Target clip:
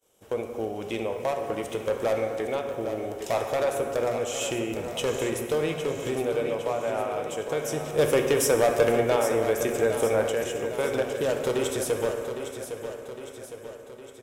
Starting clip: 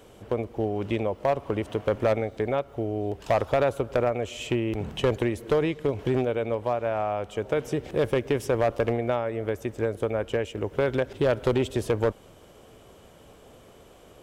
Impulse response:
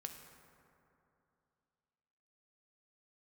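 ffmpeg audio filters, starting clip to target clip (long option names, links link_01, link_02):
-filter_complex "[0:a]equalizer=frequency=4500:width_type=o:width=0.25:gain=-6.5,agate=range=-33dB:threshold=-40dB:ratio=3:detection=peak,bass=frequency=250:gain=-8,treble=frequency=4000:gain=14[link_01];[1:a]atrim=start_sample=2205,afade=type=out:start_time=0.42:duration=0.01,atrim=end_sample=18963[link_02];[link_01][link_02]afir=irnorm=-1:irlink=0,aeval=exprs='0.188*sin(PI/2*1.41*val(0)/0.188)':channel_layout=same,asettb=1/sr,asplit=3[link_03][link_04][link_05];[link_03]atrim=end=7.984[link_06];[link_04]atrim=start=7.98:end=10.3,asetpts=PTS-STARTPTS,afade=type=in:duration=0.004:curve=qsin,afade=type=out:start_time=2.316:duration=0.004:curve=qsin,acontrast=39[link_07];[link_05]atrim=start=10.296[link_08];[link_06][link_07]acrossfade=duration=0.004:curve1=hsin:curve2=qsin[link_09];[link_09][link_08]acrossfade=duration=0.004:curve1=qsin:curve2=hsin,aecho=1:1:809|1618|2427|3236|4045|4854:0.335|0.184|0.101|0.0557|0.0307|0.0169,volume=-4dB"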